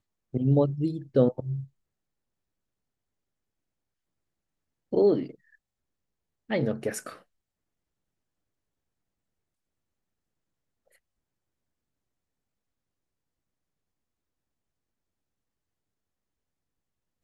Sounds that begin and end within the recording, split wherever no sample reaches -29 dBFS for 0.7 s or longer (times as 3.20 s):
4.93–5.24 s
6.50–7.07 s